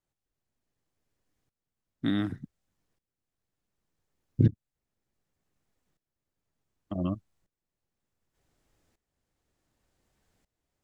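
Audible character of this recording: tremolo saw up 0.67 Hz, depth 85%

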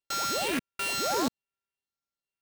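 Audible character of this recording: a buzz of ramps at a fixed pitch in blocks of 32 samples; phasing stages 4, 1.1 Hz, lowest notch 770–2700 Hz; aliases and images of a low sample rate 12 kHz, jitter 0%

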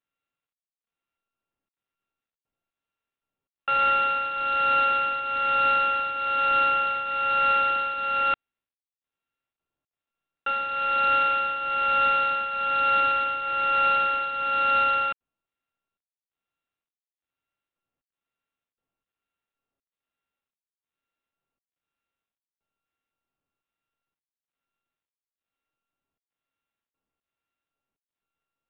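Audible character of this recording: a buzz of ramps at a fixed pitch in blocks of 32 samples; tremolo triangle 1.1 Hz, depth 70%; IMA ADPCM

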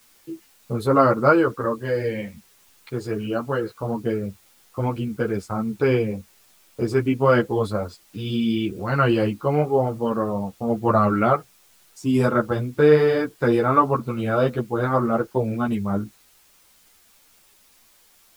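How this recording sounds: a quantiser's noise floor 10-bit, dither triangular; a shimmering, thickened sound

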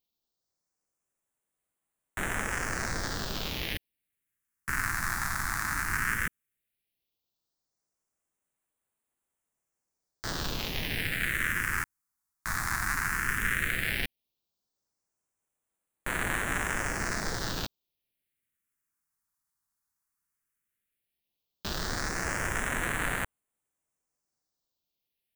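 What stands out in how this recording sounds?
phasing stages 4, 0.14 Hz, lowest notch 490–4900 Hz

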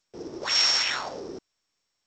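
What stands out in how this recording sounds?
a buzz of ramps at a fixed pitch in blocks of 8 samples; G.722

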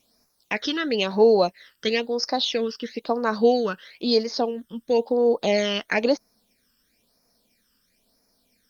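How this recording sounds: a quantiser's noise floor 12-bit, dither triangular; phasing stages 12, 1 Hz, lowest notch 690–3100 Hz; Opus

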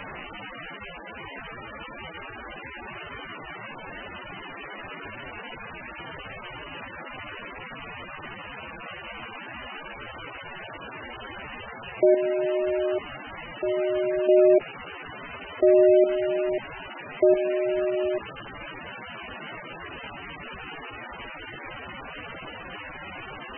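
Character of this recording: chopped level 0.77 Hz, depth 65%, duty 35%; a quantiser's noise floor 6-bit, dither triangular; MP3

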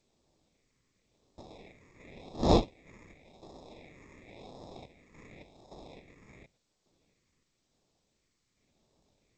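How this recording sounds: aliases and images of a low sample rate 1.5 kHz, jitter 0%; phasing stages 4, 0.92 Hz, lowest notch 700–2200 Hz; random-step tremolo, depth 75%; G.722

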